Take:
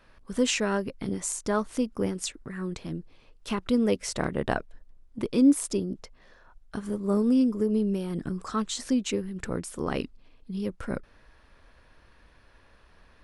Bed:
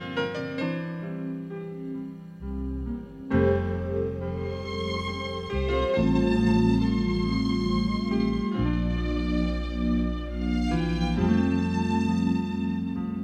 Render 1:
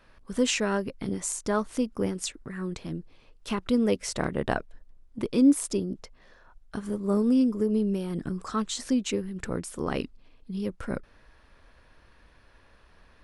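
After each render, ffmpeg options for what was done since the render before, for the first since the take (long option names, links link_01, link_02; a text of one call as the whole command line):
ffmpeg -i in.wav -af anull out.wav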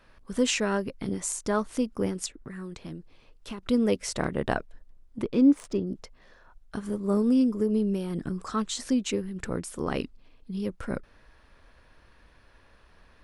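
ffmpeg -i in.wav -filter_complex "[0:a]asettb=1/sr,asplit=3[link_01][link_02][link_03];[link_01]atrim=end=2.264[link_04];[link_02]atrim=start=2.26:end=3.63,asetpts=PTS-STARTPTS,afade=type=in:duration=0.004:curve=qsin,afade=type=out:start_time=1.366:duration=0.004:curve=qsin,acrossover=split=560|3700[link_05][link_06][link_07];[link_05]acompressor=threshold=-37dB:ratio=4[link_08];[link_06]acompressor=threshold=-47dB:ratio=4[link_09];[link_07]acompressor=threshold=-51dB:ratio=4[link_10];[link_08][link_09][link_10]amix=inputs=3:normalize=0[link_11];[link_03]atrim=start=3.626[link_12];[link_04][link_11]acrossfade=duration=0.004:curve1=hsin:curve2=qsin[link_13];[link_13][link_12]acrossfade=duration=0.004:curve1=qsin:curve2=hsin,asettb=1/sr,asplit=3[link_14][link_15][link_16];[link_14]atrim=end=5.234[link_17];[link_15]atrim=start=5.23:end=5.87,asetpts=PTS-STARTPTS,afade=type=in:duration=0.004:curve=qsin,afade=type=out:start_time=0.636:duration=0.004:curve=qsin,adynamicsmooth=sensitivity=2.5:basefreq=2600[link_18];[link_16]atrim=start=5.866[link_19];[link_17][link_18]acrossfade=duration=0.004:curve1=hsin:curve2=qsin[link_20];[link_20][link_19]acrossfade=duration=0.004:curve1=qsin:curve2=hsin" out.wav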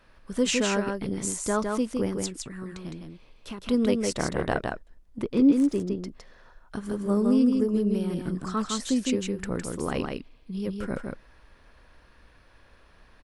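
ffmpeg -i in.wav -af "aecho=1:1:160:0.631" out.wav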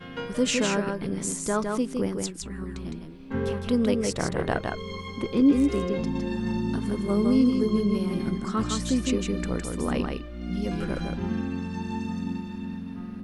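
ffmpeg -i in.wav -i bed.wav -filter_complex "[1:a]volume=-6.5dB[link_01];[0:a][link_01]amix=inputs=2:normalize=0" out.wav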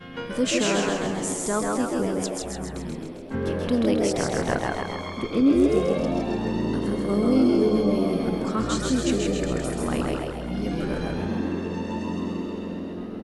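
ffmpeg -i in.wav -filter_complex "[0:a]asplit=9[link_01][link_02][link_03][link_04][link_05][link_06][link_07][link_08][link_09];[link_02]adelay=133,afreqshift=84,volume=-4dB[link_10];[link_03]adelay=266,afreqshift=168,volume=-8.6dB[link_11];[link_04]adelay=399,afreqshift=252,volume=-13.2dB[link_12];[link_05]adelay=532,afreqshift=336,volume=-17.7dB[link_13];[link_06]adelay=665,afreqshift=420,volume=-22.3dB[link_14];[link_07]adelay=798,afreqshift=504,volume=-26.9dB[link_15];[link_08]adelay=931,afreqshift=588,volume=-31.5dB[link_16];[link_09]adelay=1064,afreqshift=672,volume=-36.1dB[link_17];[link_01][link_10][link_11][link_12][link_13][link_14][link_15][link_16][link_17]amix=inputs=9:normalize=0" out.wav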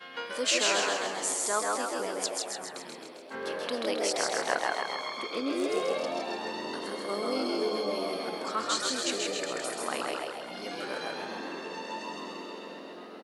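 ffmpeg -i in.wav -af "highpass=650,equalizer=frequency=4400:width_type=o:width=0.31:gain=6" out.wav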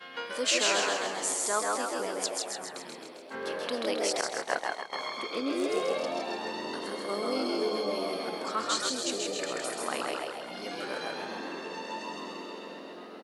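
ffmpeg -i in.wav -filter_complex "[0:a]asettb=1/sr,asplit=3[link_01][link_02][link_03];[link_01]atrim=end=4.214[link_04];[link_02]atrim=start=4.21:end=4.93,asetpts=PTS-STARTPTS,afade=type=in:duration=0.004:curve=qsin,afade=type=out:start_time=0.716:duration=0.004:curve=qsin,agate=range=-33dB:threshold=-27dB:ratio=3:release=100:detection=peak[link_05];[link_03]atrim=start=4.926[link_06];[link_04][link_05]acrossfade=duration=0.004:curve1=hsin:curve2=qsin[link_07];[link_07][link_06]acrossfade=duration=0.004:curve1=qsin:curve2=hsin,asettb=1/sr,asplit=3[link_08][link_09][link_10];[link_08]atrim=end=8.894[link_11];[link_09]atrim=start=8.89:end=9.39,asetpts=PTS-STARTPTS,afade=type=in:duration=0.004:curve=qsin,afade=type=out:start_time=0.496:duration=0.004:curve=qsin,equalizer=frequency=1800:width_type=o:width=1.2:gain=-8[link_12];[link_10]atrim=start=9.386[link_13];[link_11][link_12]acrossfade=duration=0.004:curve1=hsin:curve2=qsin[link_14];[link_14][link_13]acrossfade=duration=0.004:curve1=qsin:curve2=hsin" out.wav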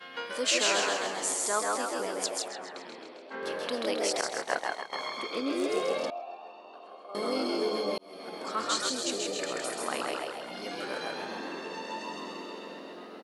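ffmpeg -i in.wav -filter_complex "[0:a]asettb=1/sr,asplit=3[link_01][link_02][link_03];[link_01]atrim=end=2.484[link_04];[link_02]atrim=start=2.48:end=3.43,asetpts=PTS-STARTPTS,afade=type=in:duration=0.004:curve=qsin,afade=type=out:start_time=0.946:duration=0.004:curve=qsin,highpass=210,lowpass=4300[link_05];[link_03]atrim=start=3.426[link_06];[link_04][link_05]acrossfade=duration=0.004:curve1=hsin:curve2=qsin[link_07];[link_07][link_06]acrossfade=duration=0.004:curve1=qsin:curve2=hsin,asettb=1/sr,asplit=3[link_08][link_09][link_10];[link_08]atrim=end=6.104[link_11];[link_09]atrim=start=6.1:end=7.15,asetpts=PTS-STARTPTS,afade=type=in:duration=0.004:curve=qsin,afade=type=out:start_time=1.046:duration=0.004:curve=qsin,asplit=3[link_12][link_13][link_14];[link_12]bandpass=frequency=730:width_type=q:width=8,volume=0dB[link_15];[link_13]bandpass=frequency=1090:width_type=q:width=8,volume=-6dB[link_16];[link_14]bandpass=frequency=2440:width_type=q:width=8,volume=-9dB[link_17];[link_15][link_16][link_17]amix=inputs=3:normalize=0[link_18];[link_10]atrim=start=7.146[link_19];[link_11][link_18]acrossfade=duration=0.004:curve1=hsin:curve2=qsin[link_20];[link_20][link_19]acrossfade=duration=0.004:curve1=qsin:curve2=hsin,asplit=2[link_21][link_22];[link_21]atrim=end=7.98,asetpts=PTS-STARTPTS,afade=type=out:start_time=7.976:duration=0.004:curve=hsin[link_23];[link_22]atrim=start=7.98,asetpts=PTS-STARTPTS,afade=type=in:duration=0.64[link_24];[link_23][link_24]concat=n=2:v=0:a=1" out.wav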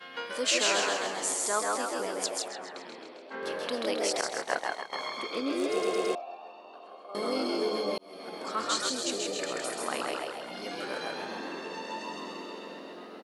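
ffmpeg -i in.wav -filter_complex "[0:a]asplit=5[link_01][link_02][link_03][link_04][link_05];[link_01]atrim=end=5.822[link_06];[link_02]atrim=start=5.708:end=5.822[link_07];[link_03]atrim=start=5.708:end=5.822[link_08];[link_04]atrim=start=5.708:end=5.822[link_09];[link_05]atrim=start=6.148[link_10];[link_06][link_07]acrossfade=duration=0.004:curve1=hsin:curve2=hsin[link_11];[link_11][link_08]acrossfade=duration=0.004:curve1=hsin:curve2=hsin[link_12];[link_12][link_09]acrossfade=duration=0.004:curve1=hsin:curve2=hsin[link_13];[link_13][link_10]acrossfade=duration=0.004:curve1=hsin:curve2=hsin" out.wav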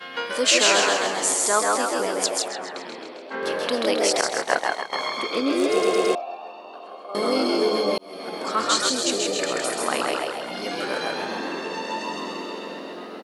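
ffmpeg -i in.wav -af "volume=8.5dB" out.wav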